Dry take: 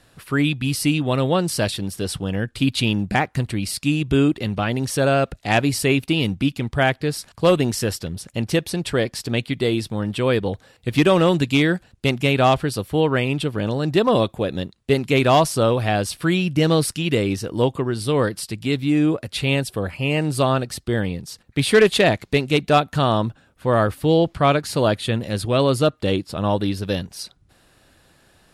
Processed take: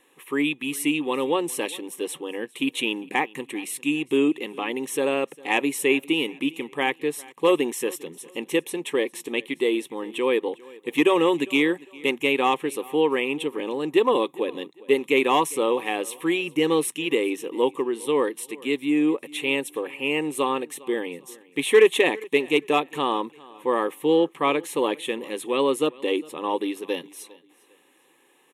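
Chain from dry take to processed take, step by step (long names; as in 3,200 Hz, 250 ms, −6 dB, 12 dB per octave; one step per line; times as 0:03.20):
linear-phase brick-wall high-pass 160 Hz
phaser with its sweep stopped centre 970 Hz, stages 8
repeating echo 403 ms, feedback 31%, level −22.5 dB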